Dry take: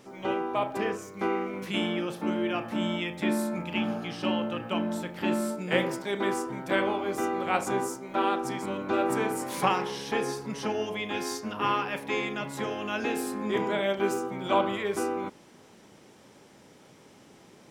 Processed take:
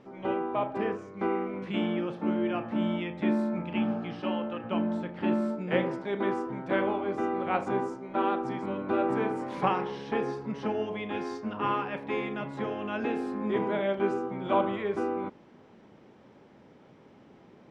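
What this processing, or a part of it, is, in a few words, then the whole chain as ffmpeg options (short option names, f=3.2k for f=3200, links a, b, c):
phone in a pocket: -filter_complex "[0:a]lowpass=3.8k,equalizer=f=230:t=o:w=0.22:g=2.5,highshelf=f=2.1k:g=-9.5,asettb=1/sr,asplit=3[a][b][c];[a]atrim=end=4.204[d];[b]atrim=start=4.2:end=4.64,asetpts=PTS-STARTPTS,afade=t=in:d=0.004:c=qsin,afade=t=out:st=0.436:d=0.004:c=qsin,equalizer=f=75:t=o:w=2.7:g=-11.5[e];[c]atrim=start=4.636[f];[d][e]acrossfade=d=0.004:c1=hsin:c2=qsin[g];[g][f]acrossfade=d=0.004:c1=qsin:c2=hsin"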